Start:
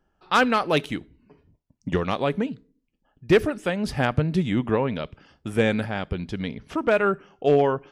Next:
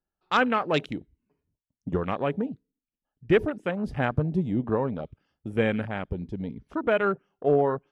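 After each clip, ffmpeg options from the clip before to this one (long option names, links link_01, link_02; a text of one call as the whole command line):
ffmpeg -i in.wav -af "afwtdn=0.0251,volume=-3dB" out.wav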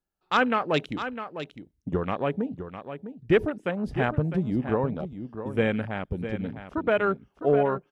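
ffmpeg -i in.wav -af "aecho=1:1:655:0.299" out.wav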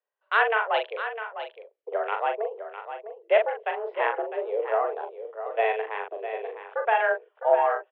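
ffmpeg -i in.wav -filter_complex "[0:a]asplit=2[link_01][link_02];[link_02]adelay=41,volume=-5.5dB[link_03];[link_01][link_03]amix=inputs=2:normalize=0,highpass=frequency=220:width_type=q:width=0.5412,highpass=frequency=220:width_type=q:width=1.307,lowpass=frequency=2900:width_type=q:width=0.5176,lowpass=frequency=2900:width_type=q:width=0.7071,lowpass=frequency=2900:width_type=q:width=1.932,afreqshift=220" out.wav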